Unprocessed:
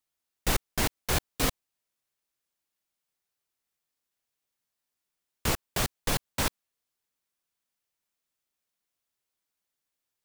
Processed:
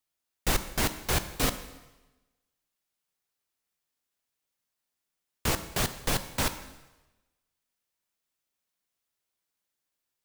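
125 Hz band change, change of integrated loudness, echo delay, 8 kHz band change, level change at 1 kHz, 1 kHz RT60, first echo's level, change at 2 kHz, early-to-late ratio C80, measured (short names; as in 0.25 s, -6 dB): +0.5 dB, +0.5 dB, none, +0.5 dB, +0.5 dB, 1.1 s, none, +0.5 dB, 14.0 dB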